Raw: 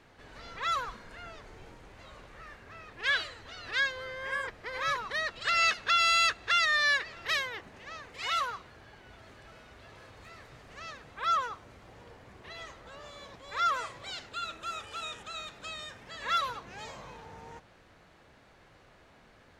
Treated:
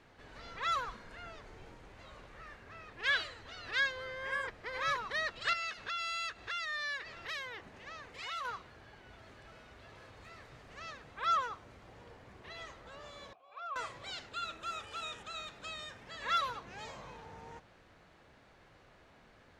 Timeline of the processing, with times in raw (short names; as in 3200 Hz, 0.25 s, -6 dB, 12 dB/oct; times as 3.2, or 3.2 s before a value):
5.53–8.45 compressor 2:1, threshold -40 dBFS
13.33–13.76 vowel filter a
whole clip: high shelf 9800 Hz -6.5 dB; gain -2.5 dB